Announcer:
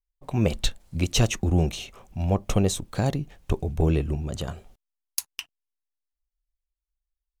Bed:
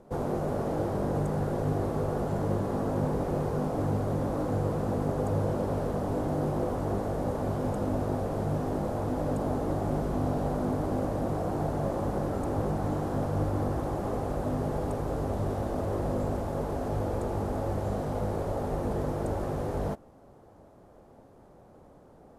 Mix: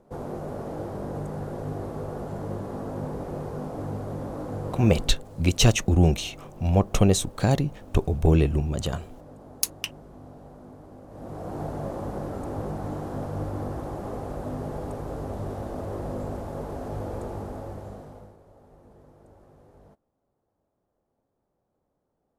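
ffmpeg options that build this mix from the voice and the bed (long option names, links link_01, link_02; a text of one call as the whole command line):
ffmpeg -i stem1.wav -i stem2.wav -filter_complex "[0:a]adelay=4450,volume=3dB[link_01];[1:a]volume=10.5dB,afade=type=out:start_time=4.86:duration=0.36:silence=0.223872,afade=type=in:start_time=11.07:duration=0.54:silence=0.188365,afade=type=out:start_time=17.22:duration=1.15:silence=0.0944061[link_02];[link_01][link_02]amix=inputs=2:normalize=0" out.wav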